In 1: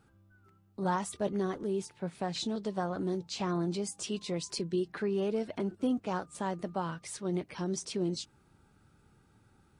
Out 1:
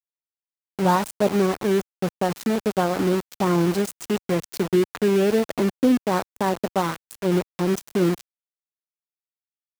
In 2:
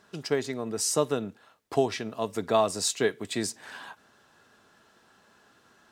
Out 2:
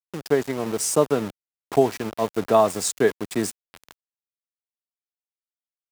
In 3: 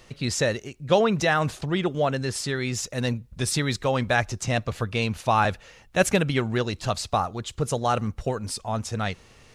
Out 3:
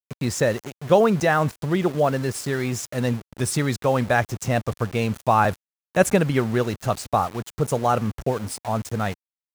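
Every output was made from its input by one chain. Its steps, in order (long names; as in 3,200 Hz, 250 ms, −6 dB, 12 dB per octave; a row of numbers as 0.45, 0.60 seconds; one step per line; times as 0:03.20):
parametric band 3,700 Hz −10 dB 1.6 octaves
centre clipping without the shift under −36.5 dBFS
high-pass filter 80 Hz 6 dB per octave
loudness normalisation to −23 LKFS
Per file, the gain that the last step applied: +12.5, +7.0, +4.0 decibels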